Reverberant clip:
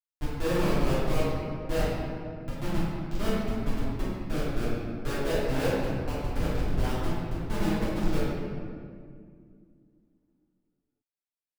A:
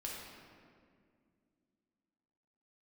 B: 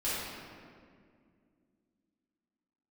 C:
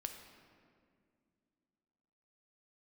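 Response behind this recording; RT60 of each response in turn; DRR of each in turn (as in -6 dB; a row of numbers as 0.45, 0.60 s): B; 2.2, 2.1, 2.2 s; -4.0, -12.0, 5.0 dB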